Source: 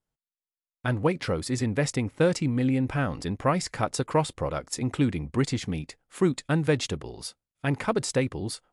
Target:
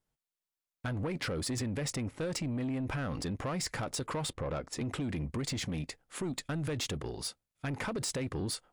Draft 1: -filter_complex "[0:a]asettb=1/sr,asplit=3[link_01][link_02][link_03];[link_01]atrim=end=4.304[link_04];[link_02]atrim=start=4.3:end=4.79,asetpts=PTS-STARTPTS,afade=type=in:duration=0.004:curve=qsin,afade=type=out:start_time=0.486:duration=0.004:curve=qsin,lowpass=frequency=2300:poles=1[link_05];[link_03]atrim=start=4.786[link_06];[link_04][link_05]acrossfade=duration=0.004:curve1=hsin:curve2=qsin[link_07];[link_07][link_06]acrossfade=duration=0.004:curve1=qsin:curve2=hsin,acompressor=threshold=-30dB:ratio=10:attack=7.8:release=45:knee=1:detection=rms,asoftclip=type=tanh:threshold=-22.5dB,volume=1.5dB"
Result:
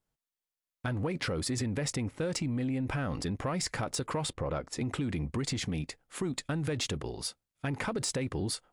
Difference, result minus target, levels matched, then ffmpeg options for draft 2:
soft clipping: distortion −11 dB
-filter_complex "[0:a]asettb=1/sr,asplit=3[link_01][link_02][link_03];[link_01]atrim=end=4.304[link_04];[link_02]atrim=start=4.3:end=4.79,asetpts=PTS-STARTPTS,afade=type=in:duration=0.004:curve=qsin,afade=type=out:start_time=0.486:duration=0.004:curve=qsin,lowpass=frequency=2300:poles=1[link_05];[link_03]atrim=start=4.786[link_06];[link_04][link_05]acrossfade=duration=0.004:curve1=hsin:curve2=qsin[link_07];[link_07][link_06]acrossfade=duration=0.004:curve1=qsin:curve2=hsin,acompressor=threshold=-30dB:ratio=10:attack=7.8:release=45:knee=1:detection=rms,asoftclip=type=tanh:threshold=-30.5dB,volume=1.5dB"

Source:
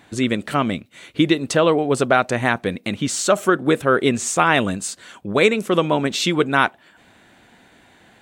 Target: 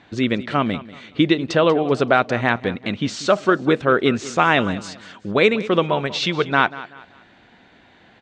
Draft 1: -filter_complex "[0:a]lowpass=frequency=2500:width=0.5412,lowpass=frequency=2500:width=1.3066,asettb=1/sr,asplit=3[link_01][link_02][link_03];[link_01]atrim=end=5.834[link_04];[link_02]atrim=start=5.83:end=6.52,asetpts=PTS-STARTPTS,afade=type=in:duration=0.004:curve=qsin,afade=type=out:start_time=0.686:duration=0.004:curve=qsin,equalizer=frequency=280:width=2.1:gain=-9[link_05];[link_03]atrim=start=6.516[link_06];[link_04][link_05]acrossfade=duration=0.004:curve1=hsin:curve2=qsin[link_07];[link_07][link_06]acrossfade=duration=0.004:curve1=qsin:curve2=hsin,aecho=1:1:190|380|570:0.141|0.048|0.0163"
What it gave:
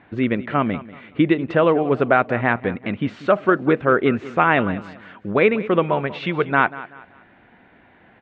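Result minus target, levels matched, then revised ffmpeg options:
4,000 Hz band −10.0 dB
-filter_complex "[0:a]lowpass=frequency=5200:width=0.5412,lowpass=frequency=5200:width=1.3066,asettb=1/sr,asplit=3[link_01][link_02][link_03];[link_01]atrim=end=5.834[link_04];[link_02]atrim=start=5.83:end=6.52,asetpts=PTS-STARTPTS,afade=type=in:duration=0.004:curve=qsin,afade=type=out:start_time=0.686:duration=0.004:curve=qsin,equalizer=frequency=280:width=2.1:gain=-9[link_05];[link_03]atrim=start=6.516[link_06];[link_04][link_05]acrossfade=duration=0.004:curve1=hsin:curve2=qsin[link_07];[link_07][link_06]acrossfade=duration=0.004:curve1=qsin:curve2=hsin,aecho=1:1:190|380|570:0.141|0.048|0.0163"

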